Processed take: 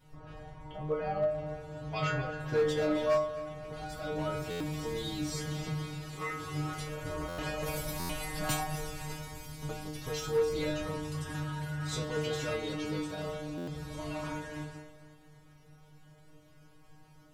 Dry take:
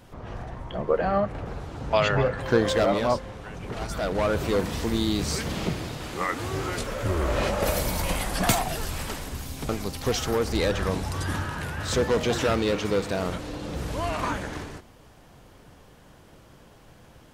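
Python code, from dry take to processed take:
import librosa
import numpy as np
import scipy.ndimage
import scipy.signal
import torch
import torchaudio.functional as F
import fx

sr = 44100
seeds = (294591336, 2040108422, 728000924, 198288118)

p1 = fx.low_shelf(x, sr, hz=130.0, db=8.5)
p2 = fx.stiff_resonator(p1, sr, f0_hz=150.0, decay_s=0.62, stiffness=0.002)
p3 = np.clip(10.0 ** (27.0 / 20.0) * p2, -1.0, 1.0) / 10.0 ** (27.0 / 20.0)
p4 = p3 + fx.echo_feedback(p3, sr, ms=261, feedback_pct=50, wet_db=-15.5, dry=0)
p5 = fx.buffer_glitch(p4, sr, at_s=(4.5, 7.28, 7.99, 13.57), block=512, repeats=8)
y = F.gain(torch.from_numpy(p5), 5.0).numpy()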